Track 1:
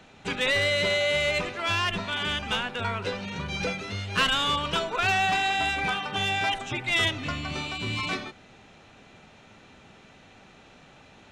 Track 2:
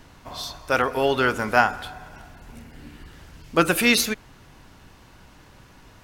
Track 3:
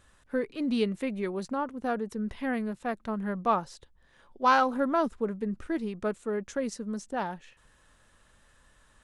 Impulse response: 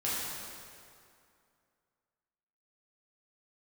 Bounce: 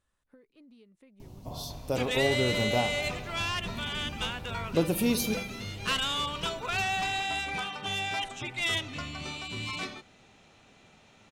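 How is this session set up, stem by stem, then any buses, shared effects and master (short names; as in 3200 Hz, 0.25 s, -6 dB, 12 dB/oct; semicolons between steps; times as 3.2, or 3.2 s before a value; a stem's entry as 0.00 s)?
-6.5 dB, 1.70 s, no send, high shelf 5300 Hz +8 dB
+0.5 dB, 1.20 s, send -21 dB, graphic EQ 125/2000/4000/8000 Hz +6/-11/-5/-5 dB; compressor 1.5:1, threshold -33 dBFS, peak gain reduction 7 dB; bell 1400 Hz -15 dB 0.96 oct
-18.0 dB, 0.00 s, no send, compressor 12:1, threshold -36 dBFS, peak gain reduction 19 dB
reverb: on, RT60 2.4 s, pre-delay 3 ms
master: bell 1600 Hz -3 dB 0.27 oct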